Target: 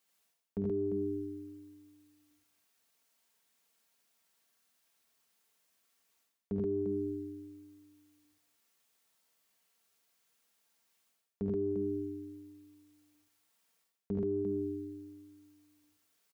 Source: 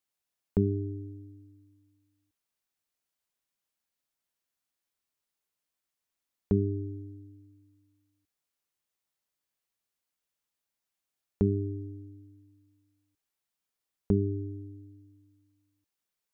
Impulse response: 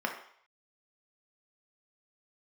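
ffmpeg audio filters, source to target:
-af "highpass=42,lowshelf=f=120:g=-7.5,aecho=1:1:4.4:0.43,aecho=1:1:51|72|85|128|348:0.299|0.473|0.562|0.531|0.119,areverse,acompressor=threshold=0.0112:ratio=12,areverse,volume=2.51"

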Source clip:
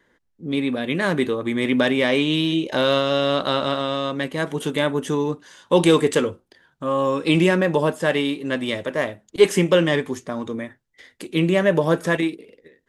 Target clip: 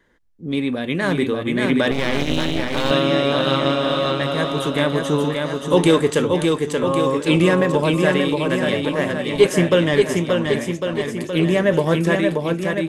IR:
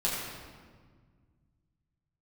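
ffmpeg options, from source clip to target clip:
-filter_complex "[0:a]lowshelf=f=81:g=10.5,aecho=1:1:580|1102|1572|1995|2375:0.631|0.398|0.251|0.158|0.1,asettb=1/sr,asplit=3[s0][s1][s2];[s0]atrim=end=1.914[s3];[s1]atrim=start=1.91:end=2.91,asetpts=PTS-STARTPTS,afade=t=in:d=0.004:c=qsin,afade=t=out:st=0.996:d=0.004:c=qsin,aeval=exprs='max(val(0),0)':c=same[s4];[s2]atrim=start=2.906[s5];[s3][s4]acrossfade=d=0.004:c1=hsin:c2=qsin[s6];[s6][s5]acrossfade=d=0.004:c1=qsin:c2=hsin"

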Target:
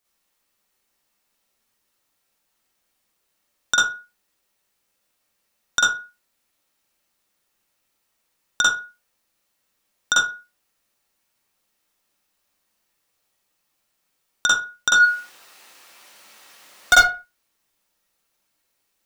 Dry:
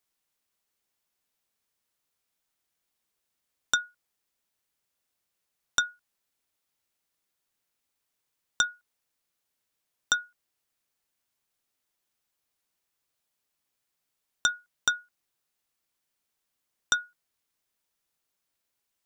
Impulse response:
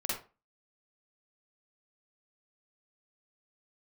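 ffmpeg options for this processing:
-filter_complex "[0:a]asplit=3[s0][s1][s2];[s0]afade=t=out:st=14.95:d=0.02[s3];[s1]asplit=2[s4][s5];[s5]highpass=f=720:p=1,volume=56.2,asoftclip=type=tanh:threshold=0.422[s6];[s4][s6]amix=inputs=2:normalize=0,lowpass=f=4000:p=1,volume=0.501,afade=t=in:st=14.95:d=0.02,afade=t=out:st=16.94:d=0.02[s7];[s2]afade=t=in:st=16.94:d=0.02[s8];[s3][s7][s8]amix=inputs=3:normalize=0[s9];[1:a]atrim=start_sample=2205,afade=t=out:st=0.36:d=0.01,atrim=end_sample=16317[s10];[s9][s10]afir=irnorm=-1:irlink=0,volume=1.88"

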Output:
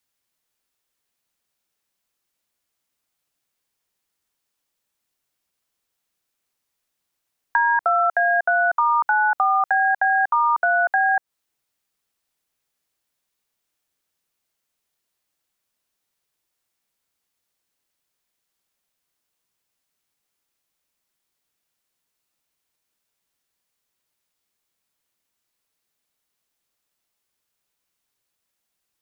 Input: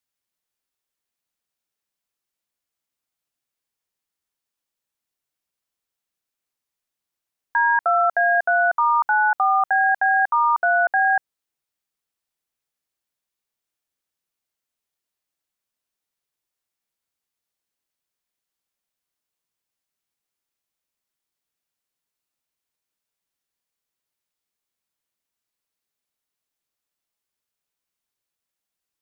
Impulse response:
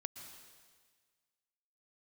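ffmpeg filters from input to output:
-filter_complex "[0:a]acrossover=split=550|1500[s0][s1][s2];[s0]acompressor=threshold=0.00562:ratio=4[s3];[s1]acompressor=threshold=0.0447:ratio=4[s4];[s2]acompressor=threshold=0.02:ratio=4[s5];[s3][s4][s5]amix=inputs=3:normalize=0,volume=2.11"

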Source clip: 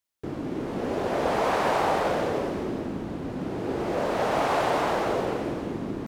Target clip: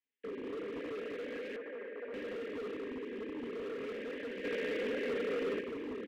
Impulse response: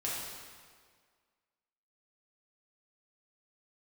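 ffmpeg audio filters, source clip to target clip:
-filter_complex "[0:a]aecho=1:1:5.1:0.69,acrossover=split=280|830[s0][s1][s2];[s0]acompressor=threshold=0.00562:ratio=4[s3];[s1]acompressor=threshold=0.0282:ratio=4[s4];[s2]acompressor=threshold=0.0112:ratio=4[s5];[s3][s4][s5]amix=inputs=3:normalize=0,asplit=2[s6][s7];[s7]equalizer=f=500:t=o:w=2.1:g=-13.5[s8];[1:a]atrim=start_sample=2205,adelay=88[s9];[s8][s9]afir=irnorm=-1:irlink=0,volume=0.531[s10];[s6][s10]amix=inputs=2:normalize=0,flanger=delay=3.4:depth=6.8:regen=55:speed=1.2:shape=triangular,highpass=f=150:t=q:w=0.5412,highpass=f=150:t=q:w=1.307,lowpass=f=3000:t=q:w=0.5176,lowpass=f=3000:t=q:w=0.7071,lowpass=f=3000:t=q:w=1.932,afreqshift=55,asuperstop=centerf=940:order=20:qfactor=0.91,asoftclip=type=hard:threshold=0.0133,asettb=1/sr,asplit=3[s11][s12][s13];[s11]atrim=end=1.564[s14];[s12]atrim=start=1.56:end=2.14,asetpts=PTS-STARTPTS,afade=t=in:d=0.004:c=qsin,afade=t=out:st=0.576:d=0.004:c=qsin,acrossover=split=320 2200:gain=0.178 1 0.0794[s15][s16][s17];[s15][s16][s17]amix=inputs=3:normalize=0[s18];[s13]atrim=start=2.136[s19];[s14][s18]acrossfade=d=0.004:c1=hsin:c2=qsin[s20];[s20][s19]acrossfade=d=0.004:c1=qsin:c2=hsin,asettb=1/sr,asplit=3[s21][s22][s23];[s21]atrim=end=4.444[s24];[s22]atrim=start=4.44:end=5.61,asetpts=PTS-STARTPTS,afade=t=in:d=0.004:c=qsin,afade=t=out:st=1.166:d=0.004:c=qsin,acontrast=50[s25];[s23]atrim=start=5.606[s26];[s24][s25]acrossfade=d=0.004:c1=hsin:c2=qsin[s27];[s27][s26]acrossfade=d=0.004:c1=qsin:c2=hsin"

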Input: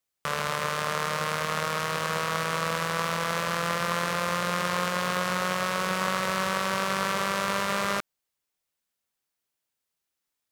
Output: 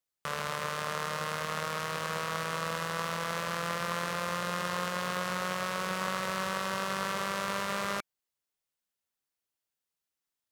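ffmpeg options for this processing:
-af "bandreject=f=2300:w=29,volume=0.531"

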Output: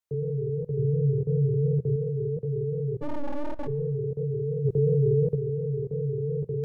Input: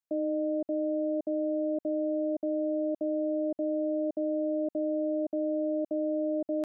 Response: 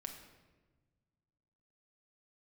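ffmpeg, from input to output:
-filter_complex "[0:a]flanger=delay=15.5:depth=7.8:speed=2.8,afreqshift=-170,alimiter=level_in=2:limit=0.0631:level=0:latency=1:release=15,volume=0.501,asettb=1/sr,asplit=3[s0][s1][s2];[s0]atrim=end=0.774[s3];[s1]atrim=start=0.77:end=1.96,asetpts=PTS-STARTPTS,afade=t=in:d=0.004:c=qsin,afade=t=out:st=1.186:d=0.004:c=qsin,equalizer=f=130:w=0.82:g=6.5[s4];[s2]atrim=start=1.956[s5];[s3][s4]acrossfade=d=0.004:c1=hsin:c2=qsin[s6];[s6][s5]acrossfade=d=0.004:c1=qsin:c2=hsin,asplit=3[s7][s8][s9];[s7]afade=t=out:st=3.01:d=0.02[s10];[s8]aeval=exprs='abs(val(0))':c=same,afade=t=in:st=3.01:d=0.02,afade=t=out:st=3.66:d=0.02[s11];[s9]afade=t=in:st=3.66:d=0.02[s12];[s10][s11][s12]amix=inputs=3:normalize=0,asplit=3[s13][s14][s15];[s13]afade=t=out:st=4.64:d=0.02[s16];[s14]acontrast=79,afade=t=in:st=4.64:d=0.02,afade=t=out:st=5.34:d=0.02[s17];[s15]afade=t=in:st=5.34:d=0.02[s18];[s16][s17][s18]amix=inputs=3:normalize=0,asplit=2[s19][s20];[1:a]atrim=start_sample=2205,afade=t=out:st=0.31:d=0.01,atrim=end_sample=14112,asetrate=35721,aresample=44100[s21];[s20][s21]afir=irnorm=-1:irlink=0,volume=0.299[s22];[s19][s22]amix=inputs=2:normalize=0,volume=1.78"

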